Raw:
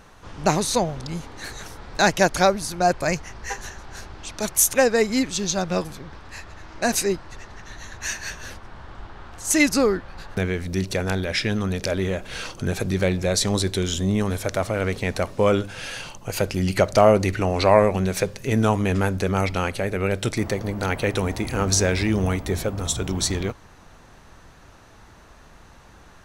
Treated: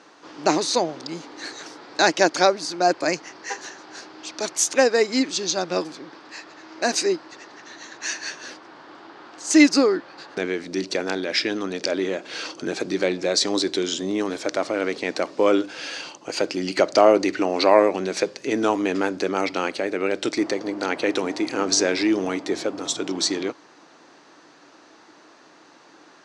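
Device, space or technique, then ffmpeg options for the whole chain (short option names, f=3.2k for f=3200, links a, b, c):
television speaker: -af "highpass=f=210:w=0.5412,highpass=f=210:w=1.3066,equalizer=f=210:t=q:w=4:g=-9,equalizer=f=310:t=q:w=4:g=9,equalizer=f=4.7k:t=q:w=4:g=6,lowpass=f=7.4k:w=0.5412,lowpass=f=7.4k:w=1.3066"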